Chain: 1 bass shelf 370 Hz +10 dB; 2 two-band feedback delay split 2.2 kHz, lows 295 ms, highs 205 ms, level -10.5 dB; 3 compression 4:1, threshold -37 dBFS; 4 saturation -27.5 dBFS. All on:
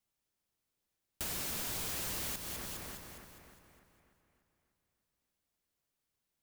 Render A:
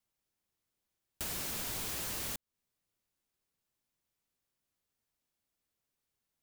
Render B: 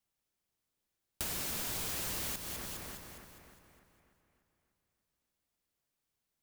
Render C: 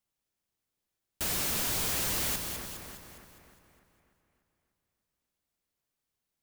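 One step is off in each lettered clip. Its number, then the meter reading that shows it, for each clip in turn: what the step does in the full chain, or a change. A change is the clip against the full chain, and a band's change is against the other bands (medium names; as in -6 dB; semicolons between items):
2, momentary loudness spread change -9 LU; 4, distortion -22 dB; 3, mean gain reduction 6.0 dB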